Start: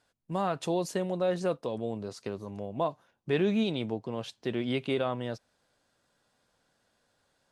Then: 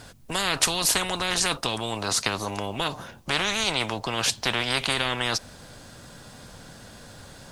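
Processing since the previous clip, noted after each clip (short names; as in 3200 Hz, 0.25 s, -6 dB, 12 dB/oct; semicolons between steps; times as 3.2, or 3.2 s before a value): tone controls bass +10 dB, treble +3 dB; spectral compressor 10:1; gain +6.5 dB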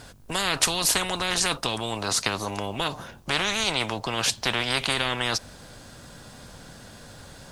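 buzz 50 Hz, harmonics 34, -59 dBFS -6 dB/oct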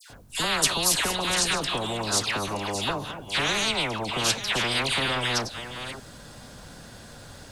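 reverse delay 0.492 s, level -10 dB; dispersion lows, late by 0.102 s, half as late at 1600 Hz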